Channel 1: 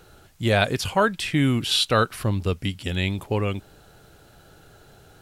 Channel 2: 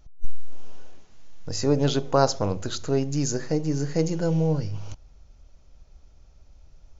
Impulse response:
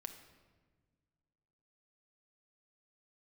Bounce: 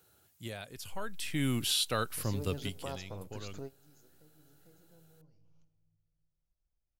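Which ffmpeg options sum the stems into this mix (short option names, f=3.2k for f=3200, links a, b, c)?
-filter_complex "[0:a]highpass=f=69:w=0.5412,highpass=f=69:w=1.3066,aemphasis=mode=production:type=50fm,alimiter=limit=-10.5dB:level=0:latency=1:release=491,volume=-8.5dB,afade=t=in:st=1.05:d=0.5:silence=0.334965,afade=t=out:st=2.44:d=0.57:silence=0.266073,asplit=2[a][b];[1:a]acompressor=threshold=-31dB:ratio=2,adelay=700,volume=-14dB,asplit=2[c][d];[d]volume=-19dB[e];[b]apad=whole_len=339538[f];[c][f]sidechaingate=range=-33dB:threshold=-58dB:ratio=16:detection=peak[g];[2:a]atrim=start_sample=2205[h];[e][h]afir=irnorm=-1:irlink=0[i];[a][g][i]amix=inputs=3:normalize=0"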